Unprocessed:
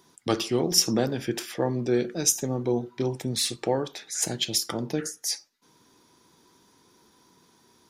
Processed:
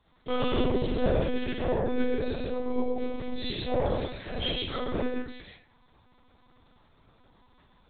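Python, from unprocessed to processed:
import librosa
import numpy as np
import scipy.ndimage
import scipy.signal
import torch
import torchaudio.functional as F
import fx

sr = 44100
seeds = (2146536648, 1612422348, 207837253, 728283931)

y = x + 10.0 ** (-3.0 / 20.0) * np.pad(x, (int(133 * sr / 1000.0), 0))[:len(x)]
y = fx.rev_freeverb(y, sr, rt60_s=0.71, hf_ratio=0.55, predelay_ms=5, drr_db=-7.5)
y = fx.lpc_monotone(y, sr, seeds[0], pitch_hz=250.0, order=10)
y = y * 10.0 ** (-8.0 / 20.0)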